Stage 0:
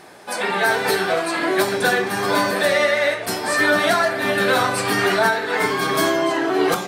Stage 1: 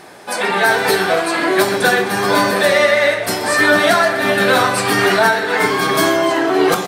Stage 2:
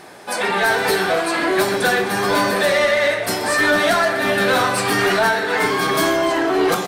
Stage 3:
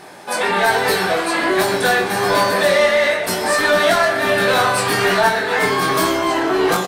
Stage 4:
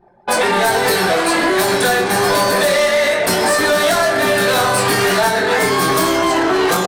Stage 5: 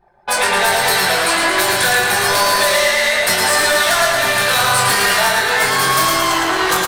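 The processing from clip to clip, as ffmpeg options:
-af "aecho=1:1:125|250|375|500|625|750:0.178|0.103|0.0598|0.0347|0.0201|0.0117,volume=4.5dB"
-af "acontrast=68,volume=-8dB"
-filter_complex "[0:a]equalizer=f=880:w=5.1:g=2.5,asplit=2[a][b];[b]adelay=22,volume=-4dB[c];[a][c]amix=inputs=2:normalize=0"
-filter_complex "[0:a]anlmdn=158,acrossover=split=750|5200[a][b][c];[a]acompressor=threshold=-25dB:ratio=4[d];[b]acompressor=threshold=-27dB:ratio=4[e];[c]acompressor=threshold=-30dB:ratio=4[f];[d][e][f]amix=inputs=3:normalize=0,asplit=2[g][h];[h]aeval=exprs='0.1*(abs(mod(val(0)/0.1+3,4)-2)-1)':c=same,volume=-5dB[i];[g][i]amix=inputs=2:normalize=0,volume=5.5dB"
-af "equalizer=f=280:t=o:w=2.3:g=-13.5,aecho=1:1:112|224|336|448|560|672|784|896:0.631|0.366|0.212|0.123|0.0714|0.0414|0.024|0.0139,volume=2dB"

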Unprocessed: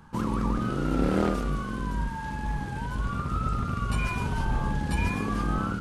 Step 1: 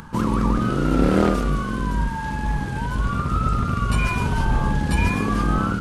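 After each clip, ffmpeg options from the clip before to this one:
-af "bandreject=f=810:w=20,acompressor=mode=upward:threshold=-41dB:ratio=2.5,volume=7dB"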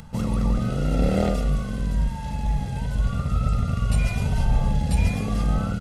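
-af "equalizer=f=1.3k:w=1.9:g=-11.5,aecho=1:1:1.5:0.7,volume=-3.5dB"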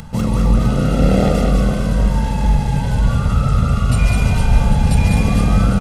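-filter_complex "[0:a]asplit=2[a][b];[b]alimiter=limit=-20dB:level=0:latency=1,volume=-2dB[c];[a][c]amix=inputs=2:normalize=0,aecho=1:1:200|460|798|1237|1809:0.631|0.398|0.251|0.158|0.1,volume=3.5dB"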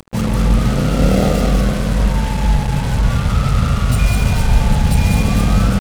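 -af "acrusher=bits=3:mix=0:aa=0.5"

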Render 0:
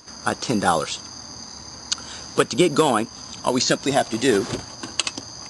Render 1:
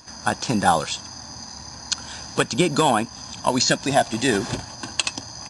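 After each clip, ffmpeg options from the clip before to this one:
-af "aecho=1:1:1.2:0.45"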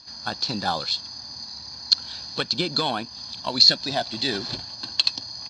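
-af "lowpass=f=4.3k:t=q:w=11,volume=-8.5dB"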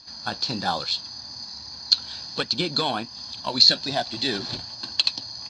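-af "flanger=delay=2.1:depth=8.6:regen=-65:speed=1.2:shape=triangular,volume=4dB"

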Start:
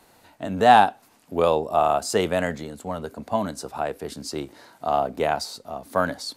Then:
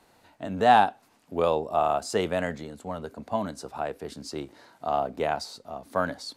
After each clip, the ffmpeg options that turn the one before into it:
-af "highshelf=f=10k:g=-9.5,volume=-4dB"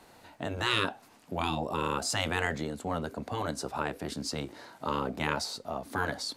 -af "afftfilt=real='re*lt(hypot(re,im),0.126)':imag='im*lt(hypot(re,im),0.126)':win_size=1024:overlap=0.75,volume=4.5dB"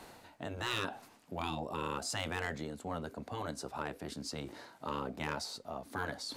-af "volume=20.5dB,asoftclip=hard,volume=-20.5dB,areverse,acompressor=mode=upward:threshold=-34dB:ratio=2.5,areverse,volume=-6.5dB"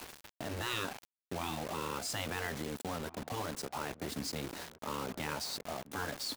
-filter_complex "[0:a]alimiter=level_in=10dB:limit=-24dB:level=0:latency=1:release=217,volume=-10dB,acrusher=bits=7:mix=0:aa=0.000001,asplit=2[a][b];[b]adelay=1691,volume=-17dB,highshelf=f=4k:g=-38[c];[a][c]amix=inputs=2:normalize=0,volume=5.5dB"

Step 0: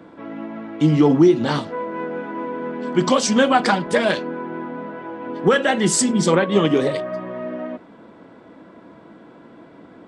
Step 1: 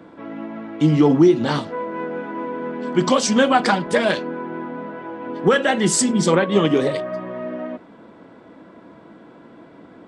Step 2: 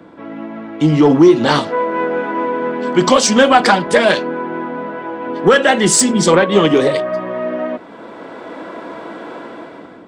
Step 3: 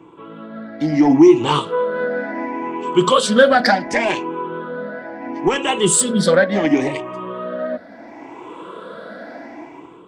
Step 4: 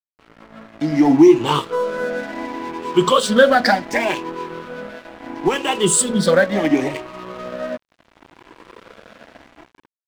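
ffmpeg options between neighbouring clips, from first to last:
-af anull
-filter_complex "[0:a]acrossover=split=330[a][b];[b]dynaudnorm=f=780:g=3:m=16dB[c];[a][c]amix=inputs=2:normalize=0,asoftclip=type=tanh:threshold=-3dB,volume=3dB"
-af "afftfilt=real='re*pow(10,15/40*sin(2*PI*(0.69*log(max(b,1)*sr/1024/100)/log(2)-(0.71)*(pts-256)/sr)))':imag='im*pow(10,15/40*sin(2*PI*(0.69*log(max(b,1)*sr/1024/100)/log(2)-(0.71)*(pts-256)/sr)))':win_size=1024:overlap=0.75,volume=-6.5dB"
-af "aeval=exprs='sgn(val(0))*max(abs(val(0))-0.0224,0)':c=same"

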